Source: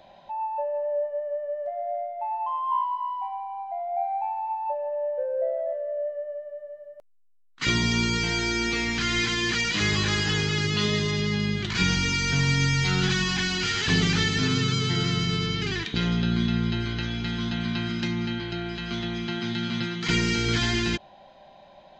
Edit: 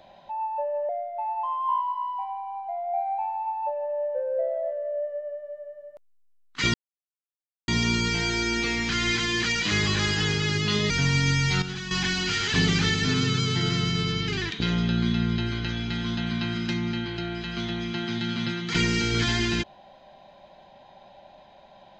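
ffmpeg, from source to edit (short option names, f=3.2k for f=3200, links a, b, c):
-filter_complex "[0:a]asplit=6[a][b][c][d][e][f];[a]atrim=end=0.892[g];[b]atrim=start=1.918:end=7.77,asetpts=PTS-STARTPTS,afade=t=out:st=5.848:d=0.004:c=hsin,apad=pad_dur=0.94[h];[c]atrim=start=7.77:end=10.992,asetpts=PTS-STARTPTS,afade=t=in:d=0.004:c=hsin[i];[d]atrim=start=12.238:end=12.962[j];[e]atrim=start=12.958:end=13.252,asetpts=PTS-STARTPTS,volume=-10dB[k];[f]atrim=start=13.248[l];[h][i]concat=n=2:v=0:a=1[m];[g][m]acrossfade=d=0.004:c1=hsin:c2=hsin[n];[n][j]acrossfade=d=0.004:c1=hsin:c2=hsin[o];[o][k]acrossfade=d=0.004:c1=hsin:c2=hsin[p];[p][l]acrossfade=d=0.004:c1=hsin:c2=hsin"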